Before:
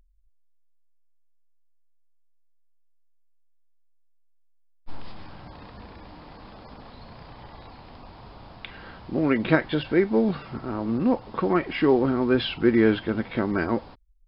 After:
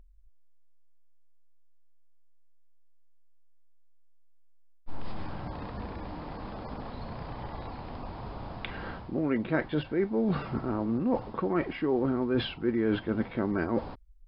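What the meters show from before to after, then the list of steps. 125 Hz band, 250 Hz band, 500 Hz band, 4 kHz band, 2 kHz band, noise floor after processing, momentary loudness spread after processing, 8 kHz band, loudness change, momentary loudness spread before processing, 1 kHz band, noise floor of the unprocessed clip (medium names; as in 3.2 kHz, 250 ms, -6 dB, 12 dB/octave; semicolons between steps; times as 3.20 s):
-3.0 dB, -5.5 dB, -6.5 dB, -7.0 dB, -7.5 dB, -53 dBFS, 13 LU, no reading, -8.0 dB, 12 LU, -4.5 dB, -59 dBFS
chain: treble shelf 2.2 kHz -10 dB; reverse; compression 4:1, threshold -33 dBFS, peak gain reduction 16 dB; reverse; trim +6 dB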